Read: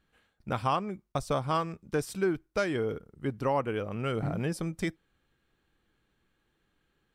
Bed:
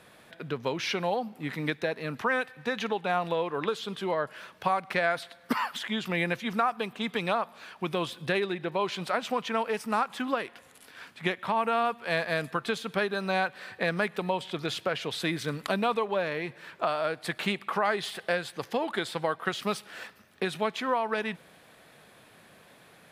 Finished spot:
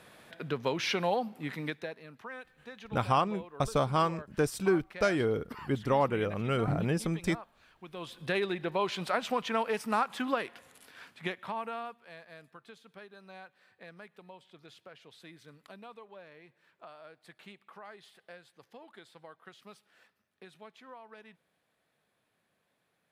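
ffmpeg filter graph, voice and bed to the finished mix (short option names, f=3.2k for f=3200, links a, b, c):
-filter_complex "[0:a]adelay=2450,volume=1.5dB[a];[1:a]volume=14.5dB,afade=t=out:st=1.21:d=0.86:silence=0.158489,afade=t=in:st=7.91:d=0.54:silence=0.177828,afade=t=out:st=10.47:d=1.66:silence=0.0944061[b];[a][b]amix=inputs=2:normalize=0"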